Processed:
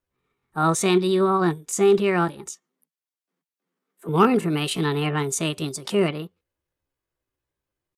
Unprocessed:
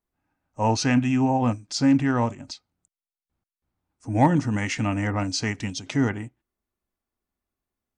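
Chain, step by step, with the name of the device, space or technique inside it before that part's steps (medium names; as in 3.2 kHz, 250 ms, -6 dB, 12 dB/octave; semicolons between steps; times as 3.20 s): chipmunk voice (pitch shift +6.5 st); 2.47–4.09 s: steep high-pass 160 Hz 96 dB/octave; trim +1.5 dB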